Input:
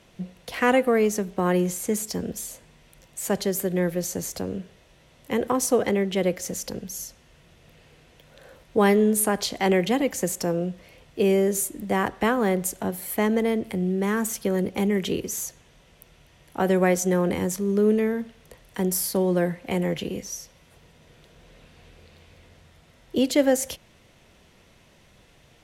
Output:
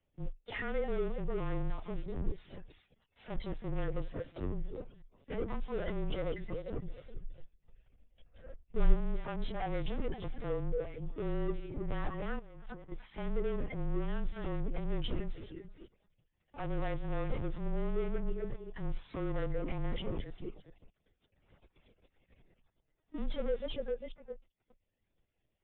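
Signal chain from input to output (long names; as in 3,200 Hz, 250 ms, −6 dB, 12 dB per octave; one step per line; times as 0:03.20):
feedback delay that plays each chunk backwards 201 ms, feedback 48%, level −10.5 dB
0:02.50–0:03.24: tilt shelving filter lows −4 dB, about 810 Hz
leveller curve on the samples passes 3
reverb reduction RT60 0.69 s
soft clipping −32 dBFS, distortion −4 dB
linear-prediction vocoder at 8 kHz pitch kept
frequency shifter −24 Hz
0:07.04–0:08.94: low-shelf EQ 100 Hz +11.5 dB
0:12.39–0:12.92: compressor whose output falls as the input rises −43 dBFS, ratio −1
every bin expanded away from the loudest bin 1.5 to 1
level +4.5 dB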